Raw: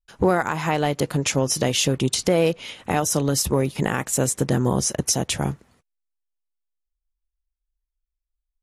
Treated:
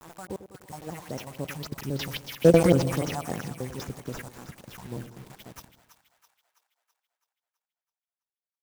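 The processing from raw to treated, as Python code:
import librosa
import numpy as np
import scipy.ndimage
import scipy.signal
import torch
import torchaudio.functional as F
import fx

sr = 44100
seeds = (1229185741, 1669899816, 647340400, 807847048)

p1 = fx.block_reorder(x, sr, ms=94.0, group=6)
p2 = fx.doppler_pass(p1, sr, speed_mps=13, closest_m=2.0, pass_at_s=2.58)
p3 = scipy.signal.sosfilt(scipy.signal.butter(2, 63.0, 'highpass', fs=sr, output='sos'), p2)
p4 = fx.level_steps(p3, sr, step_db=22)
p5 = p3 + (p4 * librosa.db_to_amplitude(2.0))
p6 = fx.sample_hold(p5, sr, seeds[0], rate_hz=8600.0, jitter_pct=0)
p7 = fx.phaser_stages(p6, sr, stages=4, low_hz=360.0, high_hz=4100.0, hz=3.7, feedback_pct=45)
p8 = fx.quant_dither(p7, sr, seeds[1], bits=8, dither='none')
p9 = p8 + fx.echo_split(p8, sr, split_hz=760.0, low_ms=99, high_ms=329, feedback_pct=52, wet_db=-11.5, dry=0)
y = fx.slew_limit(p9, sr, full_power_hz=170.0)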